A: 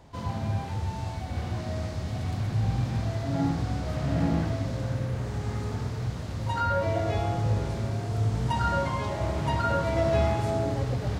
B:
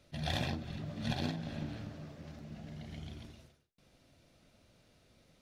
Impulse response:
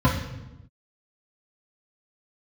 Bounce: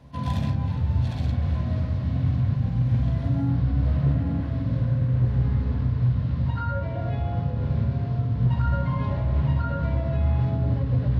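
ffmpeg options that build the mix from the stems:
-filter_complex "[0:a]lowpass=f=4.1k:w=0.5412,lowpass=f=4.1k:w=1.3066,alimiter=limit=-22dB:level=0:latency=1:release=163,volume=-4.5dB,asplit=2[a][b];[b]volume=-20dB[c];[1:a]asoftclip=type=tanh:threshold=-33dB,volume=-0.5dB[d];[2:a]atrim=start_sample=2205[e];[c][e]afir=irnorm=-1:irlink=0[f];[a][d][f]amix=inputs=3:normalize=0,asoftclip=type=hard:threshold=-14.5dB"

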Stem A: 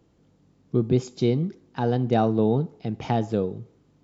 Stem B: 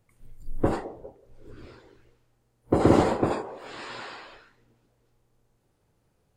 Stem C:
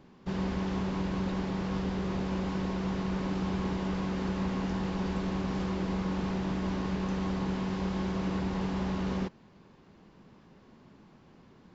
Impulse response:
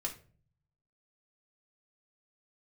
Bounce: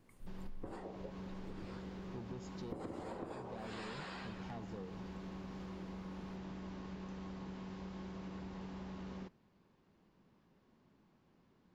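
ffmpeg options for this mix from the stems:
-filter_complex "[0:a]asoftclip=type=tanh:threshold=-22dB,adelay=1400,volume=-15.5dB[a];[1:a]acompressor=threshold=-25dB:ratio=6,volume=-2.5dB,asplit=2[b][c];[c]volume=-15dB[d];[2:a]volume=-14.5dB,asplit=2[e][f];[f]volume=-18.5dB[g];[3:a]atrim=start_sample=2205[h];[d][g]amix=inputs=2:normalize=0[i];[i][h]afir=irnorm=-1:irlink=0[j];[a][b][e][j]amix=inputs=4:normalize=0,acompressor=threshold=-42dB:ratio=8"

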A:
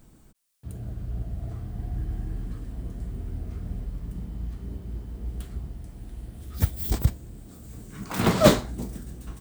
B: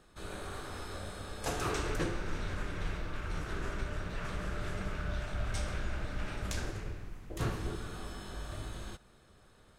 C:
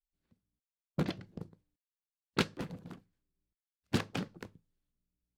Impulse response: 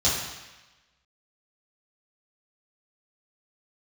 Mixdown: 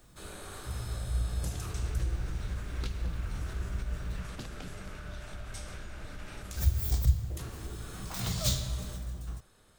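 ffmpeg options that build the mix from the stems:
-filter_complex "[0:a]equalizer=f=260:w=0.72:g=-7.5,volume=-5.5dB,asplit=3[a][b][c];[a]atrim=end=4.21,asetpts=PTS-STARTPTS,afade=t=out:st=4.206:d=0.004:c=hsin[d];[b]atrim=start=4.21:end=6.5,asetpts=PTS-STARTPTS,volume=0[e];[c]atrim=start=6.5,asetpts=PTS-STARTPTS,afade=t=in:d=0.004:c=hsin[f];[d][e][f]concat=n=3:v=0:a=1,asplit=2[g][h];[h]volume=-16dB[i];[1:a]alimiter=level_in=6dB:limit=-24dB:level=0:latency=1:release=231,volume=-6dB,crystalizer=i=1.5:c=0,volume=-2.5dB[j];[2:a]adelay=450,volume=-9dB,asplit=2[k][l];[l]volume=-21.5dB[m];[3:a]atrim=start_sample=2205[n];[i][m]amix=inputs=2:normalize=0[o];[o][n]afir=irnorm=-1:irlink=0[p];[g][j][k][p]amix=inputs=4:normalize=0,acrossover=split=130|3000[q][r][s];[r]acompressor=threshold=-42dB:ratio=6[t];[q][t][s]amix=inputs=3:normalize=0"

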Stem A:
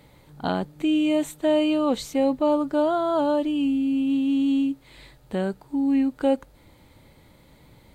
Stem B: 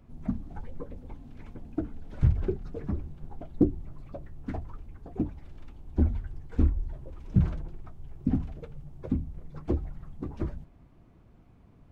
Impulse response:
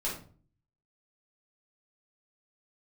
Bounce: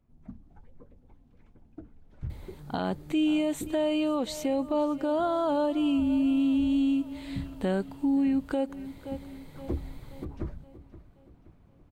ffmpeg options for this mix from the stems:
-filter_complex "[0:a]adelay=2300,volume=1dB,asplit=2[a][b];[b]volume=-19dB[c];[1:a]volume=-3dB,afade=t=in:st=9.31:d=0.44:silence=0.281838,asplit=2[d][e];[e]volume=-16dB[f];[c][f]amix=inputs=2:normalize=0,aecho=0:1:524|1048|1572|2096|2620|3144|3668:1|0.48|0.23|0.111|0.0531|0.0255|0.0122[g];[a][d][g]amix=inputs=3:normalize=0,alimiter=limit=-19.5dB:level=0:latency=1:release=236"

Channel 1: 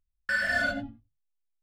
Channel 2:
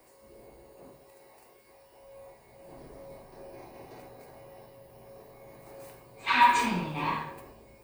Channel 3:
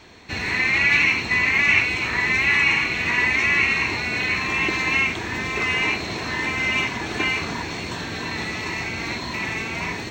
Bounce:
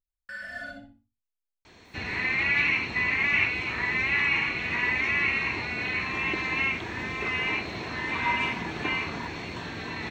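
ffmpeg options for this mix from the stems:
-filter_complex "[0:a]volume=-12dB,asplit=2[a][b];[b]volume=-8dB[c];[1:a]adelay=1850,volume=-9dB[d];[2:a]adelay=1650,volume=-6dB[e];[c]aecho=0:1:61|122|183|244:1|0.22|0.0484|0.0106[f];[a][d][e][f]amix=inputs=4:normalize=0,acrossover=split=4300[g][h];[h]acompressor=threshold=-57dB:ratio=4:attack=1:release=60[i];[g][i]amix=inputs=2:normalize=0"

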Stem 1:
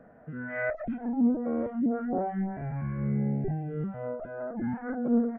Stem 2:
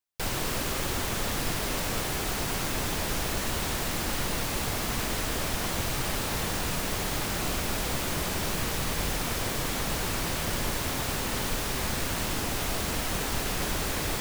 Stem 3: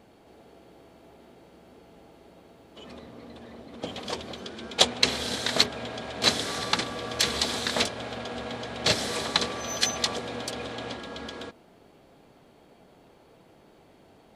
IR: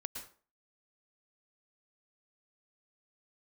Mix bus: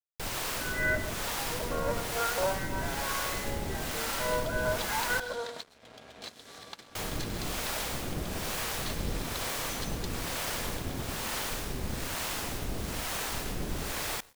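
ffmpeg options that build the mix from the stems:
-filter_complex "[0:a]highpass=f=750:w=0.5412,highpass=f=750:w=1.3066,aecho=1:1:2:0.89,dynaudnorm=f=840:g=3:m=11.5dB,adelay=250,volume=-4dB,asplit=2[a][b];[b]volume=-6dB[c];[1:a]acrossover=split=500[d][e];[d]aeval=exprs='val(0)*(1-0.7/2+0.7/2*cos(2*PI*1.1*n/s))':c=same[f];[e]aeval=exprs='val(0)*(1-0.7/2-0.7/2*cos(2*PI*1.1*n/s))':c=same[g];[f][g]amix=inputs=2:normalize=0,volume=-2.5dB,asplit=3[h][i][j];[h]atrim=end=5.2,asetpts=PTS-STARTPTS,afade=t=out:st=5.196:d=0.004:c=hsin[k];[i]atrim=start=5.2:end=6.95,asetpts=PTS-STARTPTS,volume=0[l];[j]atrim=start=6.95,asetpts=PTS-STARTPTS,afade=t=in:d=0.004:c=hsin[m];[k][l][m]concat=n=3:v=0:a=1,asplit=2[n][o];[o]volume=-9dB[p];[2:a]bandreject=f=60:t=h:w=6,bandreject=f=120:t=h:w=6,bandreject=f=180:t=h:w=6,bandreject=f=240:t=h:w=6,bandreject=f=300:t=h:w=6,bandreject=f=360:t=h:w=6,bandreject=f=420:t=h:w=6,acompressor=threshold=-32dB:ratio=4,volume=-12dB,asplit=2[q][r];[r]volume=-4dB[s];[3:a]atrim=start_sample=2205[t];[c][p][s]amix=inputs=3:normalize=0[u];[u][t]afir=irnorm=-1:irlink=0[v];[a][n][q][v]amix=inputs=4:normalize=0,aeval=exprs='sgn(val(0))*max(abs(val(0))-0.00299,0)':c=same"

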